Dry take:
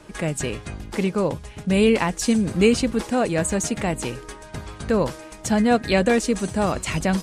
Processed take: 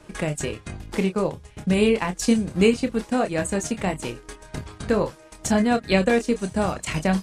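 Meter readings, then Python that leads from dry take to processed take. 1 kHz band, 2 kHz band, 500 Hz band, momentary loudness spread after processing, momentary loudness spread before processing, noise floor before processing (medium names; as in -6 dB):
-1.5 dB, -1.0 dB, -1.0 dB, 13 LU, 13 LU, -42 dBFS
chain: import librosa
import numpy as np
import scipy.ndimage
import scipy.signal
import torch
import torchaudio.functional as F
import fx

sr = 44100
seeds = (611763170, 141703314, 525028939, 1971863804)

y = fx.transient(x, sr, attack_db=4, sustain_db=-8)
y = fx.chorus_voices(y, sr, voices=4, hz=0.74, base_ms=27, depth_ms=1.5, mix_pct=30)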